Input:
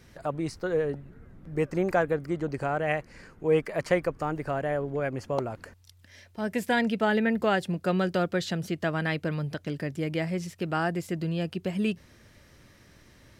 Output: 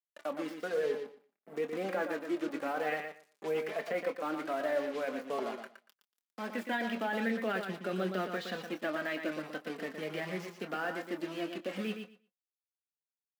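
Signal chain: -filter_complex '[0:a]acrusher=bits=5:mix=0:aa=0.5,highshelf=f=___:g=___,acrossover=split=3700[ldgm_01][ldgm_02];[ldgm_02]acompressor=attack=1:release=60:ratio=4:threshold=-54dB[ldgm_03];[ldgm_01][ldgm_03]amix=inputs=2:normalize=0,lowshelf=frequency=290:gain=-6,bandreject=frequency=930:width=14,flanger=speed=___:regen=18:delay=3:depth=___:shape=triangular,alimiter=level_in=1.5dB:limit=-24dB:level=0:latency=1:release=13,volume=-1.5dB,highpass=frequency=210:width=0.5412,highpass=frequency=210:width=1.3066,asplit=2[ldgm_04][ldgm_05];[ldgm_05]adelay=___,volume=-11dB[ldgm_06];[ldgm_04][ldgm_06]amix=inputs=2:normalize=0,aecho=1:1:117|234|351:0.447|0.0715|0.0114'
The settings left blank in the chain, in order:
11000, 12, 0.44, 2.2, 26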